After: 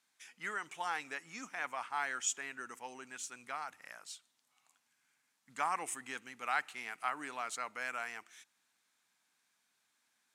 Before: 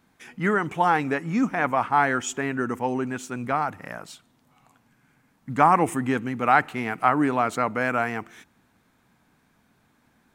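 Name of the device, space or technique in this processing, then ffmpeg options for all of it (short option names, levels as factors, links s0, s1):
piezo pickup straight into a mixer: -af "lowpass=7900,aderivative"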